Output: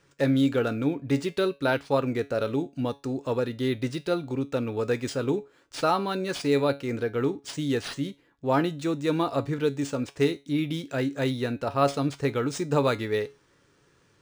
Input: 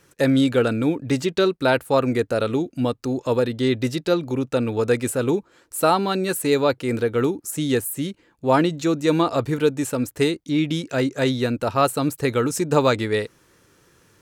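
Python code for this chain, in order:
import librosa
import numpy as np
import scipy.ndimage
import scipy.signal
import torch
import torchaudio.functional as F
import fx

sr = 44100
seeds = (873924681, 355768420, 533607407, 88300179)

y = fx.comb_fb(x, sr, f0_hz=140.0, decay_s=0.26, harmonics='all', damping=0.0, mix_pct=60)
y = np.interp(np.arange(len(y)), np.arange(len(y))[::3], y[::3])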